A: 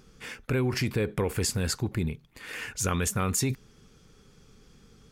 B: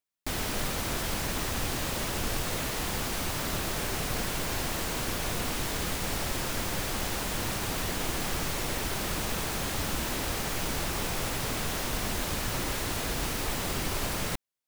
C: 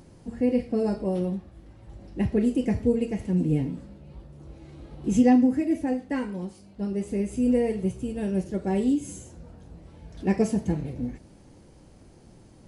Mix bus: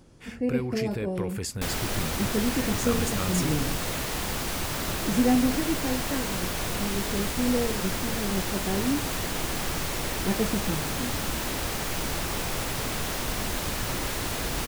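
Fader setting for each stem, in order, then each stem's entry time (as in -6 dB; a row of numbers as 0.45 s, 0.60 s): -5.0 dB, +1.5 dB, -4.0 dB; 0.00 s, 1.35 s, 0.00 s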